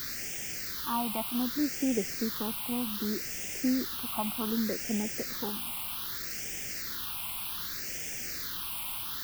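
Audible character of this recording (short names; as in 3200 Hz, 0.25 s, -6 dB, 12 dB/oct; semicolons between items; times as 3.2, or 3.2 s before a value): a quantiser's noise floor 6-bit, dither triangular; phasing stages 6, 0.65 Hz, lowest notch 460–1100 Hz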